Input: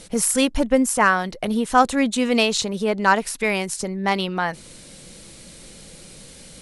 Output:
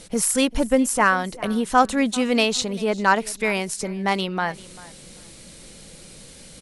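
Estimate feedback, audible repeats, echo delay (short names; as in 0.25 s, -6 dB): 20%, 2, 0.393 s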